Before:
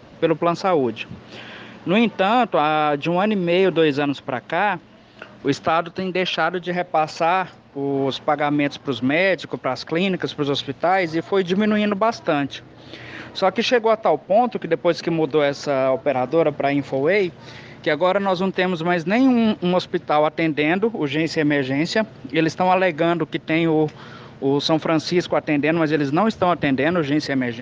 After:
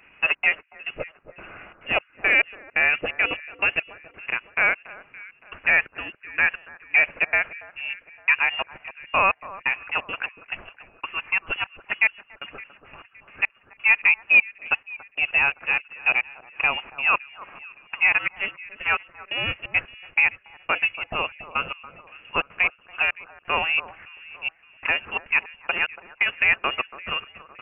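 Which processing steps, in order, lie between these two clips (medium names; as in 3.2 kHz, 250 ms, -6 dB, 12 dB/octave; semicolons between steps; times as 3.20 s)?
Bessel high-pass 670 Hz, order 2; frequency inversion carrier 3.1 kHz; in parallel at 0 dB: peak limiter -15 dBFS, peak gain reduction 7.5 dB; on the sum: trance gate "xxxx.xx...xx...." 174 bpm -60 dB; on a send: echo whose repeats swap between lows and highs 283 ms, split 1.5 kHz, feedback 60%, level -10 dB; on the sum: upward expansion 1.5:1, over -29 dBFS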